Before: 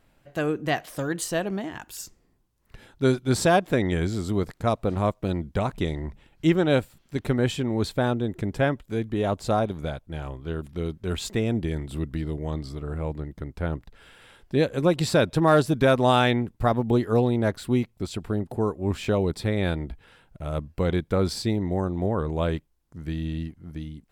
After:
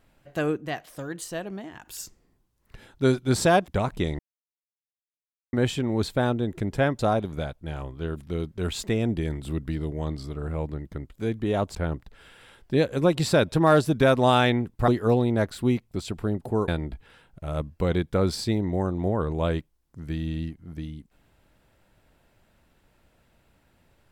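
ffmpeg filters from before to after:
-filter_complex "[0:a]asplit=11[a][b][c][d][e][f][g][h][i][j][k];[a]atrim=end=0.572[l];[b]atrim=start=0.568:end=1.852,asetpts=PTS-STARTPTS,volume=-6.5dB[m];[c]atrim=start=1.848:end=3.682[n];[d]atrim=start=5.488:end=6,asetpts=PTS-STARTPTS,afade=t=out:st=0.508:d=0.004:c=hsin[o];[e]atrim=start=6:end=7.34,asetpts=PTS-STARTPTS,volume=0[p];[f]atrim=start=7.34:end=8.802,asetpts=PTS-STARTPTS,afade=t=in:d=0.004:c=hsin[q];[g]atrim=start=9.448:end=13.562[r];[h]atrim=start=8.798:end=9.452[s];[i]atrim=start=13.558:end=16.692[t];[j]atrim=start=16.938:end=18.742[u];[k]atrim=start=19.658[v];[l][m]acrossfade=d=0.004:c1=hsin:c2=hsin[w];[w][n]acrossfade=d=0.004:c1=hsin:c2=hsin[x];[o][p][q]concat=n=3:v=0:a=1[y];[x][y]acrossfade=d=0.004:c1=hsin:c2=hsin[z];[z][r]acrossfade=d=0.004:c1=hsin:c2=hsin[aa];[aa][s]acrossfade=d=0.004:c1=hsin:c2=hsin[ab];[ab][t]acrossfade=d=0.004:c1=hsin:c2=hsin[ac];[ac][u]acrossfade=d=0.004:c1=hsin:c2=hsin[ad];[ad][v]acrossfade=d=0.004:c1=hsin:c2=hsin"

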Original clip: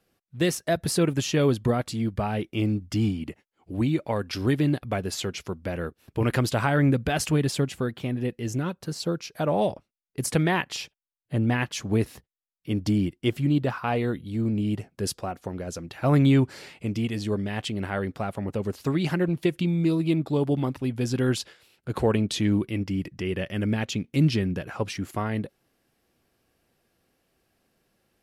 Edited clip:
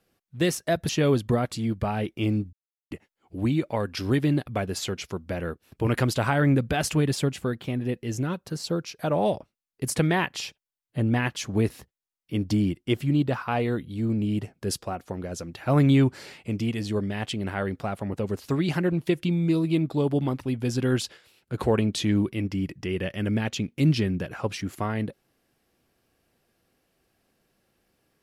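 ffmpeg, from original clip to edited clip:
-filter_complex "[0:a]asplit=4[a][b][c][d];[a]atrim=end=0.892[e];[b]atrim=start=1.248:end=2.89,asetpts=PTS-STARTPTS,afade=t=out:st=1.638:d=0.004:c=hsin[f];[c]atrim=start=2.89:end=3.27,asetpts=PTS-STARTPTS,volume=0[g];[d]atrim=start=3.27,asetpts=PTS-STARTPTS,afade=t=in:d=0.004:c=hsin[h];[f][g][h]concat=n=3:v=0:a=1[i];[e][i]acrossfade=d=0.004:c1=hsin:c2=hsin"

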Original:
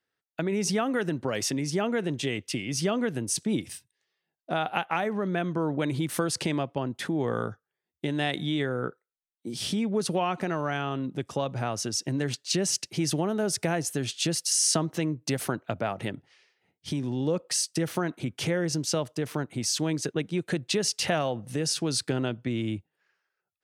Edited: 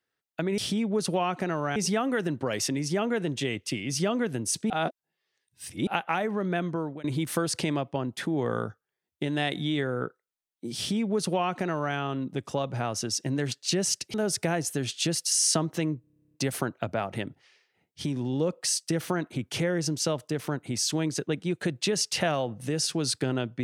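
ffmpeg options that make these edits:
-filter_complex "[0:a]asplit=18[a][b][c][d][e][f][g][h][i][j][k][l][m][n][o][p][q][r];[a]atrim=end=0.582[s];[b]atrim=start=9.588:end=10.772[t];[c]atrim=start=0.578:end=3.522[u];[d]atrim=start=3.518:end=4.692,asetpts=PTS-STARTPTS,areverse[v];[e]atrim=start=4.688:end=5.86,asetpts=PTS-STARTPTS,afade=t=out:st=0.672:d=0.5:c=qsin:silence=0.0668344[w];[f]atrim=start=5.86:end=12.962,asetpts=PTS-STARTPTS,afade=t=in:d=0.004:c=hsin:silence=0.0668344[x];[g]atrim=start=13.338:end=15.242[y];[h]atrim=start=15.208:end=15.242[z];[i]atrim=start=15.208:end=15.242[aa];[j]atrim=start=15.208:end=15.242[ab];[k]atrim=start=15.208:end=15.242[ac];[l]atrim=start=15.208:end=15.242[ad];[m]atrim=start=15.208:end=15.242[ae];[n]atrim=start=15.208:end=15.242[af];[o]atrim=start=15.208:end=15.242[ag];[p]atrim=start=15.208:end=15.242[ah];[q]atrim=start=15.208:end=15.242[ai];[r]atrim=start=15.208[aj];[s][t]acrossfade=d=0.004:c1=hsin:c2=hsin[ak];[ak][u]acrossfade=d=0.004:c1=hsin:c2=hsin[al];[al][v]acrossfade=d=0.004:c1=hsin:c2=hsin[am];[w][x]concat=n=2:v=0:a=1[an];[am][an]acrossfade=d=0.004:c1=hsin:c2=hsin[ao];[ao][y]acrossfade=d=0.004:c1=hsin:c2=hsin[ap];[ap][z]acrossfade=d=0.004:c1=hsin:c2=hsin[aq];[aq][aa]acrossfade=d=0.004:c1=hsin:c2=hsin[ar];[ar][ab]acrossfade=d=0.004:c1=hsin:c2=hsin[as];[as][ac]acrossfade=d=0.004:c1=hsin:c2=hsin[at];[at][ad]acrossfade=d=0.004:c1=hsin:c2=hsin[au];[au][ae]acrossfade=d=0.004:c1=hsin:c2=hsin[av];[av][af]acrossfade=d=0.004:c1=hsin:c2=hsin[aw];[aw][ag]acrossfade=d=0.004:c1=hsin:c2=hsin[ax];[ax][ah]acrossfade=d=0.004:c1=hsin:c2=hsin[ay];[ay][ai]acrossfade=d=0.004:c1=hsin:c2=hsin[az];[az][aj]acrossfade=d=0.004:c1=hsin:c2=hsin"

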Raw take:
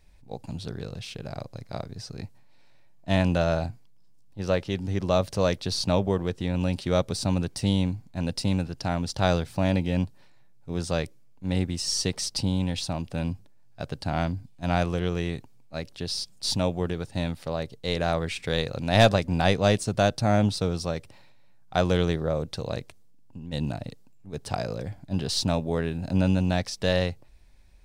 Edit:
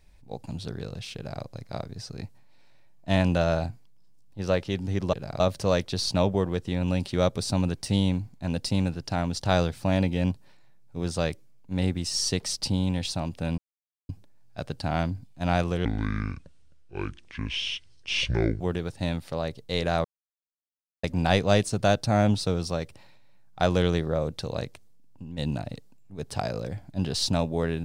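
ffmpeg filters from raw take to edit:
-filter_complex "[0:a]asplit=8[a][b][c][d][e][f][g][h];[a]atrim=end=5.132[i];[b]atrim=start=1.158:end=1.432[j];[c]atrim=start=5.128:end=13.31,asetpts=PTS-STARTPTS,afade=t=out:st=8.178:d=0.004:c=hsin,apad=pad_dur=0.51[k];[d]atrim=start=13.31:end=15.074,asetpts=PTS-STARTPTS,afade=t=in:d=0.004:c=hsin[l];[e]atrim=start=15.07:end=16.75,asetpts=PTS-STARTPTS,asetrate=26901,aresample=44100[m];[f]atrim=start=16.746:end=18.19,asetpts=PTS-STARTPTS,afade=t=out:st=1.44:d=0.004:c=hsin[n];[g]atrim=start=18.19:end=19.18,asetpts=PTS-STARTPTS,volume=0[o];[h]atrim=start=19.18,asetpts=PTS-STARTPTS,afade=t=in:d=0.004:c=hsin[p];[i][j]acrossfade=d=0.004:c1=hsin:c2=hsin[q];[k][l]concat=n=2:v=0:a=1[r];[q][r]acrossfade=d=0.004:c1=hsin:c2=hsin[s];[s][m]acrossfade=d=0.004:c1=hsin:c2=hsin[t];[n][o][p]concat=n=3:v=0:a=1[u];[t][u]acrossfade=d=0.004:c1=hsin:c2=hsin"

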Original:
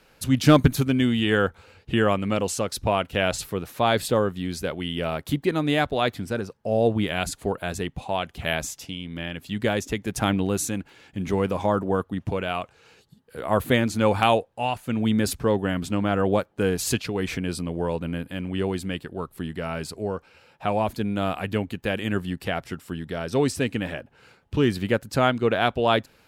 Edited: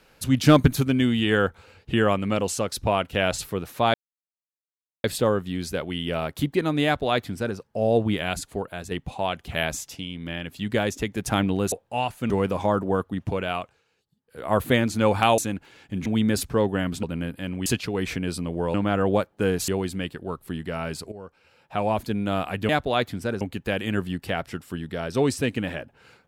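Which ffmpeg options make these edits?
-filter_complex "[0:a]asplit=16[a][b][c][d][e][f][g][h][i][j][k][l][m][n][o][p];[a]atrim=end=3.94,asetpts=PTS-STARTPTS,afade=t=out:st=3.936:d=0.004:c=hsin,apad=pad_dur=1.1[q];[b]atrim=start=3.94:end=7.81,asetpts=PTS-STARTPTS,afade=t=in:d=0.004:c=hsin,afade=t=out:st=3.08:d=0.79:silence=0.446684[r];[c]atrim=start=7.81:end=10.622,asetpts=PTS-STARTPTS,afade=t=in:d=0.004:c=hsin:silence=0.446684[s];[d]atrim=start=14.378:end=14.962[t];[e]atrim=start=11.298:end=12.85,asetpts=PTS-STARTPTS,afade=t=out:st=1.252:d=0.3:silence=0.149624[u];[f]atrim=start=12.85:end=13.22,asetpts=PTS-STARTPTS,volume=-16.5dB[v];[g]atrim=start=13.22:end=14.382,asetpts=PTS-STARTPTS,afade=t=in:d=0.3:silence=0.149624[w];[h]atrim=start=10.618:end=11.302[x];[i]atrim=start=14.958:end=15.932[y];[j]atrim=start=17.948:end=18.582[z];[k]atrim=start=16.868:end=17.952[aa];[l]atrim=start=15.928:end=16.872[ab];[m]atrim=start=18.578:end=20.02,asetpts=PTS-STARTPTS,afade=t=out:st=1.438:d=0.004:c=hsin:silence=0.16788[ac];[n]atrim=start=20.02:end=21.592,asetpts=PTS-STARTPTS,afade=t=in:d=0.79:silence=0.16788[ad];[o]atrim=start=5.748:end=6.472[ae];[p]atrim=start=21.588[af];[q][r][s]concat=n=3:v=0:a=1[ag];[ag][t]acrossfade=d=0.004:c1=hsin:c2=hsin[ah];[u][v][w]concat=n=3:v=0:a=1[ai];[ah][ai]acrossfade=d=0.004:c1=hsin:c2=hsin[aj];[aj][x]acrossfade=d=0.004:c1=hsin:c2=hsin[ak];[ak][y]acrossfade=d=0.004:c1=hsin:c2=hsin[al];[al][z]acrossfade=d=0.004:c1=hsin:c2=hsin[am];[am][aa]acrossfade=d=0.004:c1=hsin:c2=hsin[an];[an][ab]acrossfade=d=0.004:c1=hsin:c2=hsin[ao];[ac][ad]concat=n=2:v=0:a=1[ap];[ao][ap]acrossfade=d=0.004:c1=hsin:c2=hsin[aq];[aq][ae]acrossfade=d=0.004:c1=hsin:c2=hsin[ar];[ar][af]acrossfade=d=0.004:c1=hsin:c2=hsin"

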